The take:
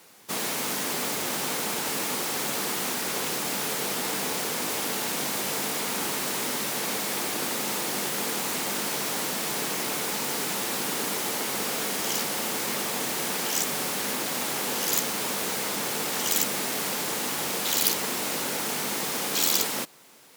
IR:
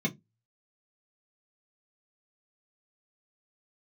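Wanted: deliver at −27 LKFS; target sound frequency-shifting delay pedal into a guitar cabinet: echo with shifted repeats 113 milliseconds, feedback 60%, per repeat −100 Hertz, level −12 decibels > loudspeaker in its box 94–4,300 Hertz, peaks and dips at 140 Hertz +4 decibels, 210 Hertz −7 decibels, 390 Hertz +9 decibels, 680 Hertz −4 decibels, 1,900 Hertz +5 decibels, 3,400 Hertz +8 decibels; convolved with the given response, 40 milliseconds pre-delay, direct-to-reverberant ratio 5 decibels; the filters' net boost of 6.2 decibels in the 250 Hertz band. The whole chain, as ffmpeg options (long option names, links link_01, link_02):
-filter_complex "[0:a]equalizer=frequency=250:width_type=o:gain=8,asplit=2[link_01][link_02];[1:a]atrim=start_sample=2205,adelay=40[link_03];[link_02][link_03]afir=irnorm=-1:irlink=0,volume=-12dB[link_04];[link_01][link_04]amix=inputs=2:normalize=0,asplit=8[link_05][link_06][link_07][link_08][link_09][link_10][link_11][link_12];[link_06]adelay=113,afreqshift=-100,volume=-12dB[link_13];[link_07]adelay=226,afreqshift=-200,volume=-16.4dB[link_14];[link_08]adelay=339,afreqshift=-300,volume=-20.9dB[link_15];[link_09]adelay=452,afreqshift=-400,volume=-25.3dB[link_16];[link_10]adelay=565,afreqshift=-500,volume=-29.7dB[link_17];[link_11]adelay=678,afreqshift=-600,volume=-34.2dB[link_18];[link_12]adelay=791,afreqshift=-700,volume=-38.6dB[link_19];[link_05][link_13][link_14][link_15][link_16][link_17][link_18][link_19]amix=inputs=8:normalize=0,highpass=94,equalizer=frequency=140:width_type=q:width=4:gain=4,equalizer=frequency=210:width_type=q:width=4:gain=-7,equalizer=frequency=390:width_type=q:width=4:gain=9,equalizer=frequency=680:width_type=q:width=4:gain=-4,equalizer=frequency=1900:width_type=q:width=4:gain=5,equalizer=frequency=3400:width_type=q:width=4:gain=8,lowpass=frequency=4300:width=0.5412,lowpass=frequency=4300:width=1.3066,volume=-2.5dB"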